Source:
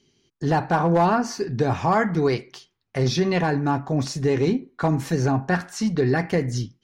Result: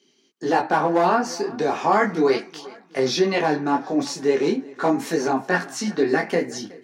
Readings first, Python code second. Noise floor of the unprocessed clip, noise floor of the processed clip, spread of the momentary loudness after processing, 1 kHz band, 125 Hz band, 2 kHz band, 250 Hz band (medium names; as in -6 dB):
-73 dBFS, -61 dBFS, 7 LU, +2.0 dB, -12.0 dB, +3.0 dB, -0.5 dB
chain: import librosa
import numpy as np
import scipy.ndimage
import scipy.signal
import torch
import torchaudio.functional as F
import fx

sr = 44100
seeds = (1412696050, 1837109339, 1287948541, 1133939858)

p1 = scipy.signal.sosfilt(scipy.signal.butter(4, 230.0, 'highpass', fs=sr, output='sos'), x)
p2 = p1 + fx.echo_feedback(p1, sr, ms=370, feedback_pct=47, wet_db=-21.5, dry=0)
p3 = fx.detune_double(p2, sr, cents=13)
y = p3 * 10.0 ** (6.5 / 20.0)